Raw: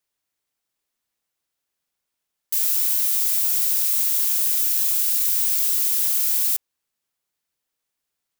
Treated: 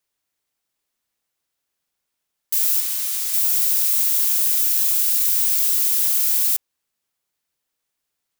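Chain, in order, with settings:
0:02.80–0:03.34: high-shelf EQ 9,800 Hz −6.5 dB
level +2 dB

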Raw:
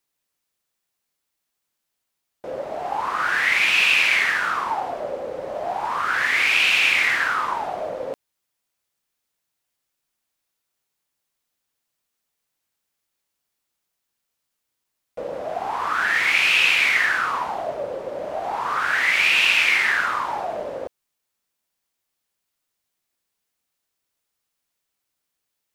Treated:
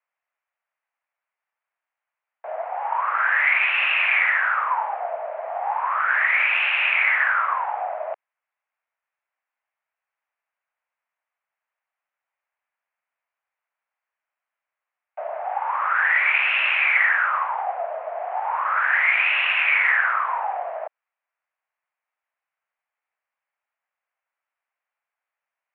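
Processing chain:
single-sideband voice off tune +110 Hz 500–2,300 Hz
level +2 dB

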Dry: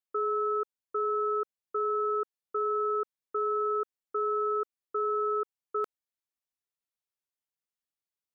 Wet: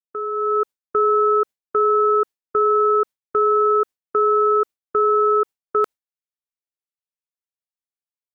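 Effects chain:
noise gate with hold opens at −25 dBFS
automatic gain control gain up to 10.5 dB
level +2 dB

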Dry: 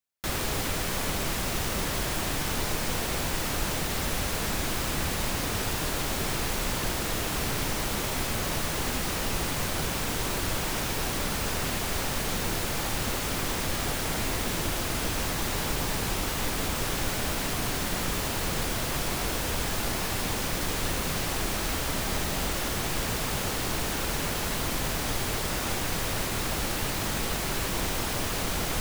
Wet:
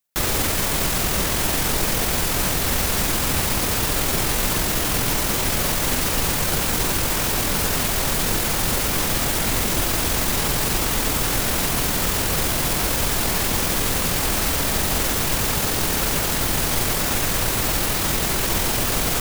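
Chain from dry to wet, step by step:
high-shelf EQ 7,700 Hz +6.5 dB
tempo change 1.5×
level +7 dB

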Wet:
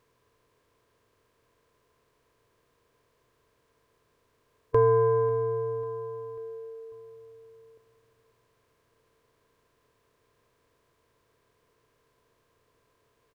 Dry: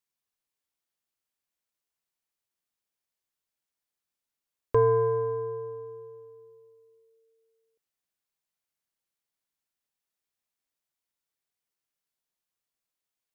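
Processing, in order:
compressor on every frequency bin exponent 0.6
on a send: repeating echo 544 ms, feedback 56%, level −20 dB

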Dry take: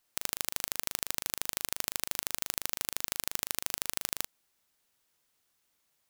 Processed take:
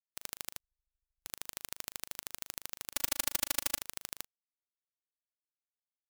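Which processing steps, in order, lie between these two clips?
0:00.59–0:01.26: guitar amp tone stack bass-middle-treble 10-0-1
0:02.95–0:03.79: comb filter 3.5 ms, depth 58%
every bin expanded away from the loudest bin 4 to 1

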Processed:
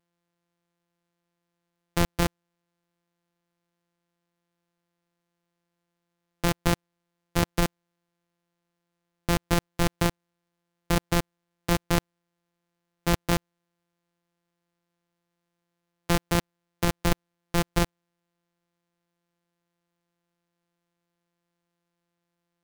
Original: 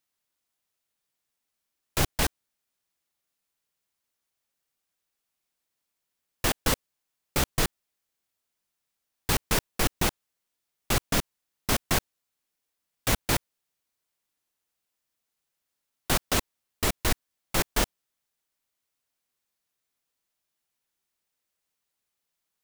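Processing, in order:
samples sorted by size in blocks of 256 samples
level +1.5 dB

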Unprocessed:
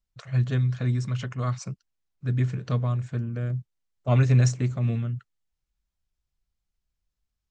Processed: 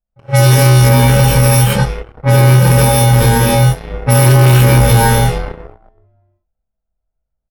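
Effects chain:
samples in bit-reversed order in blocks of 64 samples
double-tracking delay 25 ms −10 dB
echo with shifted repeats 374 ms, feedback 37%, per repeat −72 Hz, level −17 dB
reverb whose tail is shaped and stops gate 140 ms rising, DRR −7.5 dB
leveller curve on the samples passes 3
parametric band 6,300 Hz −2.5 dB 2 octaves, from 0:00.89 −9.5 dB
low-pass that shuts in the quiet parts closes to 830 Hz, open at −7.5 dBFS
low-shelf EQ 360 Hz −7 dB
boost into a limiter +10.5 dB
level −1 dB

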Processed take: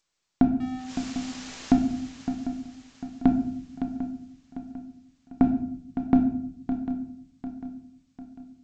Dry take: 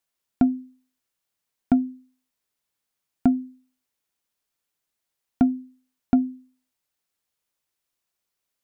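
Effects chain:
0:00.60–0:01.77: converter with a step at zero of −33 dBFS
on a send: feedback echo with a long and a short gap by turns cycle 748 ms, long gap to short 3 to 1, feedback 43%, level −10 dB
on the sum: rectangular room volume 140 cubic metres, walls mixed, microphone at 0.66 metres
G.722 64 kbit/s 16,000 Hz

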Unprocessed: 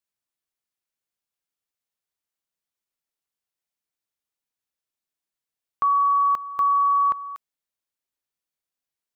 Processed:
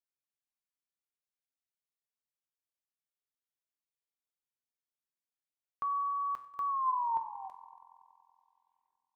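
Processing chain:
turntable brake at the end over 2.48 s
tuned comb filter 130 Hz, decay 0.51 s, harmonics all, mix 70%
echo machine with several playback heads 94 ms, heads all three, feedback 59%, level −22 dB
level −4 dB

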